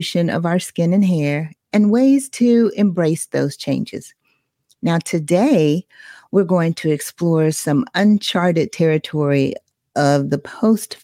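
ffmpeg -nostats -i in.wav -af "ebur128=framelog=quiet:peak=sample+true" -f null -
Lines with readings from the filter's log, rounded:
Integrated loudness:
  I:         -17.4 LUFS
  Threshold: -27.8 LUFS
Loudness range:
  LRA:         2.9 LU
  Threshold: -37.9 LUFS
  LRA low:   -19.4 LUFS
  LRA high:  -16.5 LUFS
Sample peak:
  Peak:       -2.8 dBFS
True peak:
  Peak:       -2.8 dBFS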